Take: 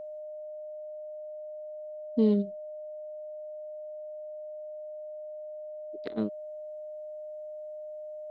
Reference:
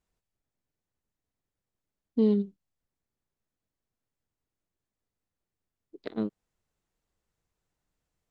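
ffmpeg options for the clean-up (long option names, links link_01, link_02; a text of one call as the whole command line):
ffmpeg -i in.wav -af "bandreject=frequency=610:width=30" out.wav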